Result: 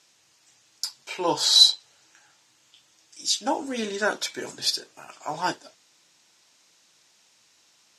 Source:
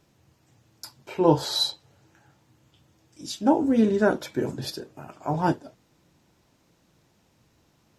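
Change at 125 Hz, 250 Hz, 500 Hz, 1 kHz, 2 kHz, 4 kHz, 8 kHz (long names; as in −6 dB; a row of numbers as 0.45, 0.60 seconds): −16.0, −11.0, −6.0, −1.0, +4.0, +10.5, +11.5 decibels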